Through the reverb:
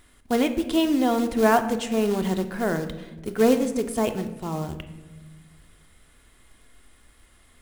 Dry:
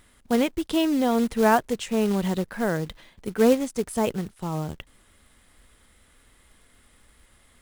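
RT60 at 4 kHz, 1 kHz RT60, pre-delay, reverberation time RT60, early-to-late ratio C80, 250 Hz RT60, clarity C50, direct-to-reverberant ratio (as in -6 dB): 0.65 s, 1.0 s, 3 ms, 1.3 s, 13.5 dB, 2.0 s, 12.0 dB, 7.0 dB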